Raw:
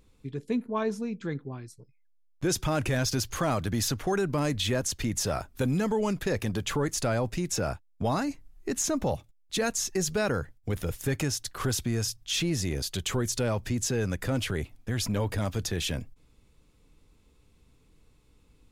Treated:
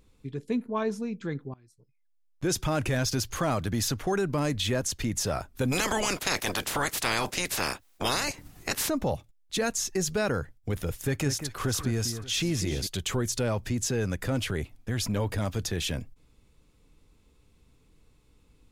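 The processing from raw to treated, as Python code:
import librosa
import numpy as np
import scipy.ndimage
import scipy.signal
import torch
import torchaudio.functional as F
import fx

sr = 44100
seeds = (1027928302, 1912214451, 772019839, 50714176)

y = fx.spec_clip(x, sr, under_db=29, at=(5.71, 8.88), fade=0.02)
y = fx.echo_alternate(y, sr, ms=193, hz=2200.0, feedback_pct=56, wet_db=-8.5, at=(10.92, 12.87))
y = fx.edit(y, sr, fx.fade_in_from(start_s=1.54, length_s=1.0, floor_db=-22.0), tone=tone)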